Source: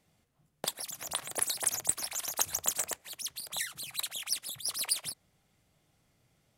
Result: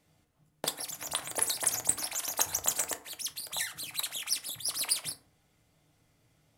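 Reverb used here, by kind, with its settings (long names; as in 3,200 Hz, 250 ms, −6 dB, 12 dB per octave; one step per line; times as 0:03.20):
feedback delay network reverb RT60 0.5 s, low-frequency decay 1×, high-frequency decay 0.45×, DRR 6 dB
level +1 dB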